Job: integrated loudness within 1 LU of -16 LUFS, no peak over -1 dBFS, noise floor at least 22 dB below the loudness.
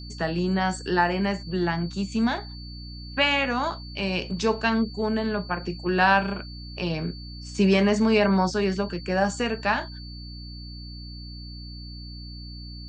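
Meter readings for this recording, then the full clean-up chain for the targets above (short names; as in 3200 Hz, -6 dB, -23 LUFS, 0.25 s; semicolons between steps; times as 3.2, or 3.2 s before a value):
hum 60 Hz; harmonics up to 300 Hz; hum level -37 dBFS; steady tone 4500 Hz; tone level -43 dBFS; loudness -24.5 LUFS; peak -7.5 dBFS; loudness target -16.0 LUFS
-> notches 60/120/180/240/300 Hz; notch 4500 Hz, Q 30; gain +8.5 dB; limiter -1 dBFS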